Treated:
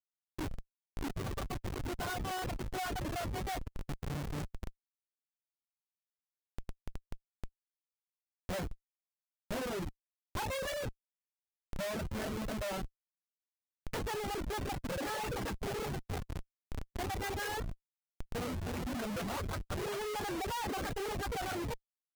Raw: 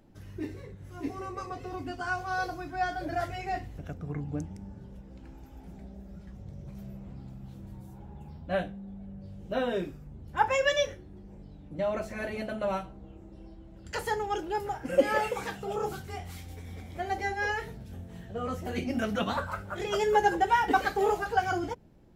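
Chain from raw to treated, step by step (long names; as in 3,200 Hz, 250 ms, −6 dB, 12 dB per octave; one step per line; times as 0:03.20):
comparator with hysteresis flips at −34.5 dBFS
reverb reduction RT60 0.65 s
floating-point word with a short mantissa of 6 bits
level −3 dB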